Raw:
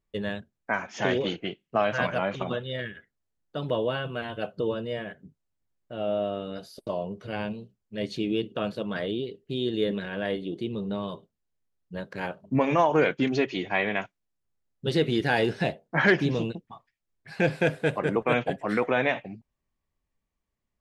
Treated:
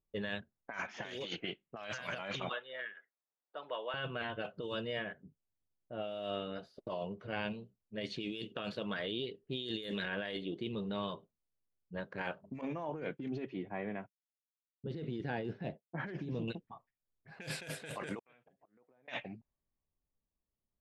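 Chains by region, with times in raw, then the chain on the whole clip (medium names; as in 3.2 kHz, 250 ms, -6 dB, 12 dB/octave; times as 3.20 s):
2.49–3.94 s: band-pass 790–4400 Hz + three bands compressed up and down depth 40%
12.61–16.48 s: expander -41 dBFS + band-pass filter 170 Hz, Q 0.66
18.19–19.08 s: inverted gate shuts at -22 dBFS, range -32 dB + compression 16:1, threshold -55 dBFS
whole clip: level-controlled noise filter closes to 650 Hz, open at -20 dBFS; pre-emphasis filter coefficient 0.9; compressor with a negative ratio -49 dBFS, ratio -1; trim +9.5 dB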